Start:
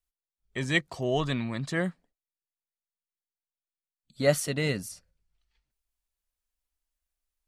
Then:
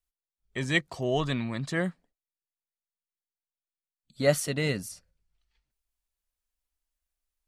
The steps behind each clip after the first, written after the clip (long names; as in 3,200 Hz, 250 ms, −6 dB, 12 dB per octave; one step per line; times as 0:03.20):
no processing that can be heard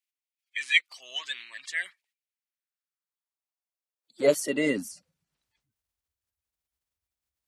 spectral magnitudes quantised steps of 30 dB
high-pass filter sweep 2,300 Hz → 96 Hz, 0:02.24–0:05.88